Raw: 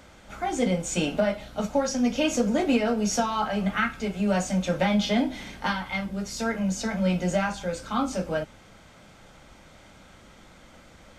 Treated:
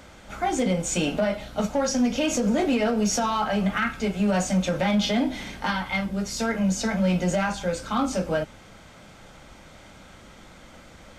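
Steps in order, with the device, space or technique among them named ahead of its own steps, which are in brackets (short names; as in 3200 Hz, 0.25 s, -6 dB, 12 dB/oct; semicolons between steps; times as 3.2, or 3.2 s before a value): limiter into clipper (limiter -18 dBFS, peak gain reduction 7 dB; hard clip -20 dBFS, distortion -26 dB); gain +3.5 dB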